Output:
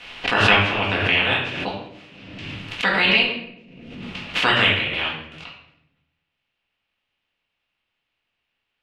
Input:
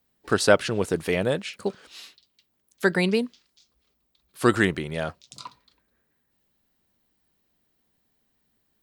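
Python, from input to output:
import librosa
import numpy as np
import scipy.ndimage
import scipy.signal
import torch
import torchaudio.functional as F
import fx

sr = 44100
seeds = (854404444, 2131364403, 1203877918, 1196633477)

y = fx.spec_clip(x, sr, under_db=24)
y = fx.leveller(y, sr, passes=1)
y = fx.lowpass_res(y, sr, hz=2800.0, q=3.6)
y = fx.room_shoebox(y, sr, seeds[0], volume_m3=200.0, walls='mixed', distance_m=1.9)
y = fx.pre_swell(y, sr, db_per_s=38.0)
y = y * librosa.db_to_amplitude(-10.5)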